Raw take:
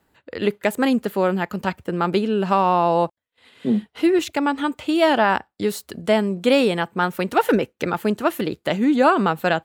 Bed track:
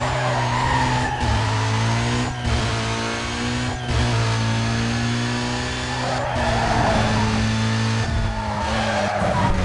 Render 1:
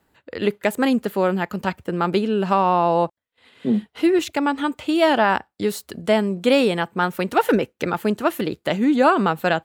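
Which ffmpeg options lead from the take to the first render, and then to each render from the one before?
-filter_complex "[0:a]asettb=1/sr,asplit=3[a][b][c];[a]atrim=end=2.534[d];[b]atrim=start=2.53:end=3.74,asetpts=PTS-STARTPTS,afade=t=in:d=0.004:c=qsin,afade=t=out:st=1.206:d=0.004:c=qsin,highshelf=f=4.9k:g=-4.5[e];[c]atrim=start=3.736[f];[d][e]acrossfade=d=0.004:c1=hsin:c2=qsin[g];[g][f]acrossfade=d=0.004:c1=qsin:c2=hsin"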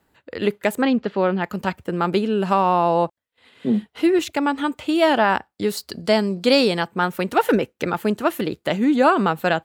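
-filter_complex "[0:a]asplit=3[a][b][c];[a]afade=t=out:st=0.81:d=0.02[d];[b]lowpass=f=4.7k:w=0.5412,lowpass=f=4.7k:w=1.3066,afade=t=in:st=0.81:d=0.02,afade=t=out:st=1.42:d=0.02[e];[c]afade=t=in:st=1.42:d=0.02[f];[d][e][f]amix=inputs=3:normalize=0,asettb=1/sr,asplit=3[g][h][i];[g]atrim=end=2.424[j];[h]atrim=start=2.42:end=2.91,asetpts=PTS-STARTPTS,afade=t=in:d=0.004:c=qsin,afade=t=out:st=0.486:d=0.004:c=qsin,equalizer=f=10k:t=o:w=0.65:g=6.5[k];[i]atrim=start=2.906[l];[j][k]acrossfade=d=0.004:c1=hsin:c2=qsin[m];[m][l]acrossfade=d=0.004:c1=qsin:c2=hsin,asettb=1/sr,asplit=3[n][o][p];[n]atrim=end=5.774[q];[o]atrim=start=5.77:end=6.87,asetpts=PTS-STARTPTS,afade=t=in:d=0.004:c=qsin,afade=t=out:st=1.096:d=0.004:c=qsin,equalizer=f=4.7k:w=3.7:g=14.5[r];[p]atrim=start=6.866[s];[q][r]acrossfade=d=0.004:c1=hsin:c2=qsin[t];[t][s]acrossfade=d=0.004:c1=qsin:c2=hsin"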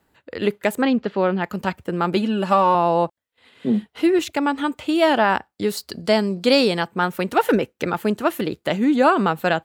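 -filter_complex "[0:a]asettb=1/sr,asplit=3[a][b][c];[a]atrim=end=2.164[d];[b]atrim=start=2.16:end=2.75,asetpts=PTS-STARTPTS,afade=t=in:d=0.004:c=qsin,afade=t=out:st=0.586:d=0.004:c=qsin,aecho=1:1:3.5:0.67,atrim=end_sample=26019[e];[c]atrim=start=2.746[f];[d][e]acrossfade=d=0.004:c1=hsin:c2=qsin[g];[g][f]acrossfade=d=0.004:c1=qsin:c2=hsin"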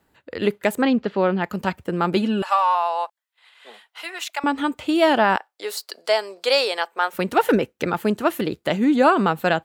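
-filter_complex "[0:a]asettb=1/sr,asplit=3[a][b][c];[a]atrim=end=2.424[d];[b]atrim=start=2.42:end=4.44,asetpts=PTS-STARTPTS,afade=t=in:d=0.004:c=qsin,afade=t=out:st=2.016:d=0.004:c=qsin,highpass=f=770:w=0.5412,highpass=f=770:w=1.3066[e];[c]atrim=start=4.436[f];[d][e]acrossfade=d=0.004:c1=hsin:c2=qsin[g];[g][f]acrossfade=d=0.004:c1=qsin:c2=hsin,asettb=1/sr,asplit=3[h][i][j];[h]atrim=end=5.364[k];[i]atrim=start=5.36:end=7.13,asetpts=PTS-STARTPTS,afade=t=in:d=0.004:c=qsin,afade=t=out:st=1.766:d=0.004:c=qsin,highpass=f=500:w=0.5412,highpass=f=500:w=1.3066[l];[j]atrim=start=7.126[m];[k][l]acrossfade=d=0.004:c1=hsin:c2=qsin[n];[n][m]acrossfade=d=0.004:c1=qsin:c2=hsin"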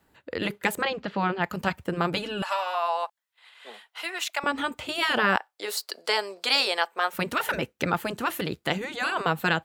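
-af "afftfilt=real='re*lt(hypot(re,im),0.631)':imag='im*lt(hypot(re,im),0.631)':win_size=1024:overlap=0.75,adynamicequalizer=threshold=0.0112:dfrequency=360:dqfactor=0.9:tfrequency=360:tqfactor=0.9:attack=5:release=100:ratio=0.375:range=2.5:mode=cutabove:tftype=bell"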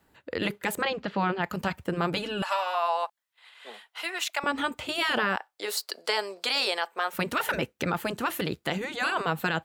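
-af "alimiter=limit=-15.5dB:level=0:latency=1:release=35"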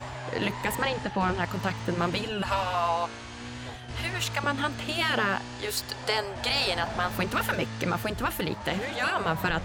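-filter_complex "[1:a]volume=-16dB[a];[0:a][a]amix=inputs=2:normalize=0"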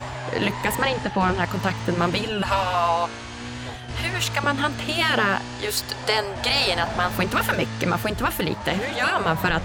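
-af "volume=5.5dB"

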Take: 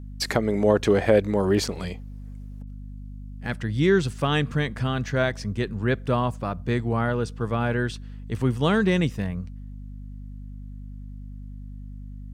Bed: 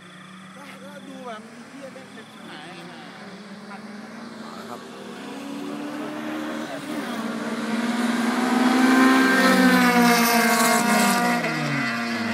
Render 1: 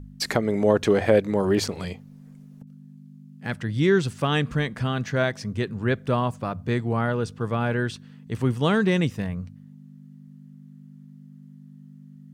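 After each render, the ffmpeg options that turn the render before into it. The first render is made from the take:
-af "bandreject=f=50:t=h:w=4,bandreject=f=100:t=h:w=4"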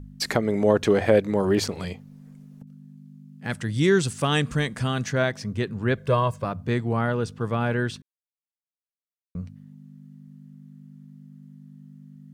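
-filter_complex "[0:a]asettb=1/sr,asplit=3[a][b][c];[a]atrim=end=3.504[d];[b]atrim=start=3.5:end=5.13,asetpts=PTS-STARTPTS,afade=t=in:d=0.004:c=qsin,afade=t=out:st=1.626:d=0.004:c=qsin,equalizer=f=8.5k:t=o:w=1.3:g=11[e];[c]atrim=start=5.126[f];[d][e]acrossfade=d=0.004:c1=hsin:c2=qsin[g];[g][f]acrossfade=d=0.004:c1=qsin:c2=hsin,asettb=1/sr,asplit=3[h][i][j];[h]atrim=end=5.974[k];[i]atrim=start=5.97:end=6.45,asetpts=PTS-STARTPTS,afade=t=in:d=0.004:c=qsin,afade=t=out:st=0.476:d=0.004:c=qsin,aecho=1:1:1.9:0.65,atrim=end_sample=21168[l];[j]atrim=start=6.446[m];[k][l]acrossfade=d=0.004:c1=hsin:c2=qsin[n];[n][m]acrossfade=d=0.004:c1=qsin:c2=hsin,asplit=3[o][p][q];[o]atrim=end=8.02,asetpts=PTS-STARTPTS,afade=t=out:st=8.016:d=0.004:c=hsin[r];[p]atrim=start=8.02:end=9.35,asetpts=PTS-STARTPTS,volume=0[s];[q]atrim=start=9.35,asetpts=PTS-STARTPTS,afade=t=in:d=0.004:c=hsin[t];[r][s][t]concat=n=3:v=0:a=1"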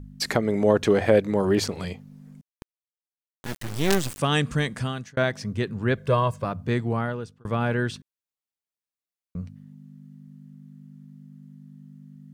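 -filter_complex "[0:a]asettb=1/sr,asplit=3[a][b][c];[a]atrim=end=2.414[d];[b]atrim=start=2.41:end=4.19,asetpts=PTS-STARTPTS,afade=t=in:d=0.004:c=qsin,afade=t=out:st=1.776:d=0.004:c=qsin,acrusher=bits=3:dc=4:mix=0:aa=0.000001[e];[c]atrim=start=4.186[f];[d][e]acrossfade=d=0.004:c1=hsin:c2=qsin[g];[g][f]acrossfade=d=0.004:c1=qsin:c2=hsin,asplit=3[h][i][j];[h]atrim=end=5.17,asetpts=PTS-STARTPTS,afade=t=out:st=4.75:d=0.42[k];[i]atrim=start=5.17:end=7.45,asetpts=PTS-STARTPTS,afade=t=in:d=0.004:c=hsin,afade=t=out:st=1.7:d=0.58[l];[j]atrim=start=7.45,asetpts=PTS-STARTPTS,afade=t=in:d=0.004:c=hsin[m];[k][l][m]concat=n=3:v=0:a=1"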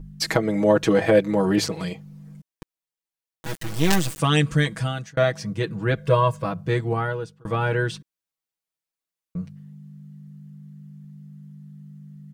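-af "aecho=1:1:6.2:0.88"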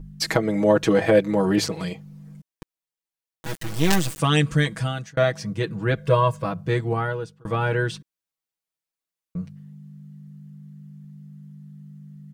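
-af anull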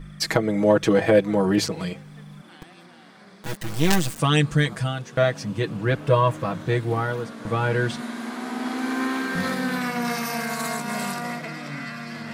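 -filter_complex "[1:a]volume=-9.5dB[a];[0:a][a]amix=inputs=2:normalize=0"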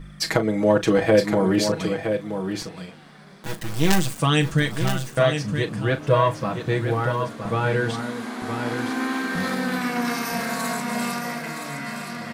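-filter_complex "[0:a]asplit=2[a][b];[b]adelay=37,volume=-11.5dB[c];[a][c]amix=inputs=2:normalize=0,aecho=1:1:968:0.422"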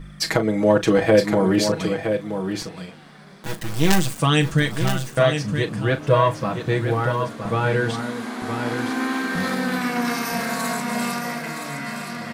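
-af "volume=1.5dB,alimiter=limit=-3dB:level=0:latency=1"

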